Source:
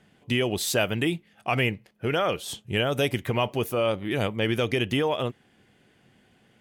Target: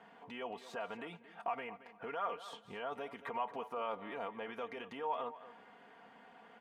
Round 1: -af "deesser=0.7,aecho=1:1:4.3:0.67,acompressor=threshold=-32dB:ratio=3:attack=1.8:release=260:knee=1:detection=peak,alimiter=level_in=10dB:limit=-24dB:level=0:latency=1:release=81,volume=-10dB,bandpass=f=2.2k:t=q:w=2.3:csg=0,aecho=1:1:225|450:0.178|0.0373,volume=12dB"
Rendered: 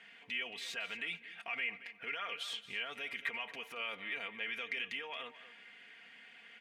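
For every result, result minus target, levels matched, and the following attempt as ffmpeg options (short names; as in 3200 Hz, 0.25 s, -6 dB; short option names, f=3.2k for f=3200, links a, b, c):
1000 Hz band -11.5 dB; compressor: peak gain reduction -7 dB
-af "deesser=0.7,aecho=1:1:4.3:0.67,acompressor=threshold=-32dB:ratio=3:attack=1.8:release=260:knee=1:detection=peak,alimiter=level_in=10dB:limit=-24dB:level=0:latency=1:release=81,volume=-10dB,bandpass=f=960:t=q:w=2.3:csg=0,aecho=1:1:225|450:0.178|0.0373,volume=12dB"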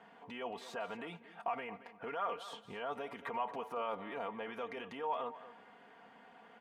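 compressor: peak gain reduction -7 dB
-af "deesser=0.7,aecho=1:1:4.3:0.67,acompressor=threshold=-42.5dB:ratio=3:attack=1.8:release=260:knee=1:detection=peak,alimiter=level_in=10dB:limit=-24dB:level=0:latency=1:release=81,volume=-10dB,bandpass=f=960:t=q:w=2.3:csg=0,aecho=1:1:225|450:0.178|0.0373,volume=12dB"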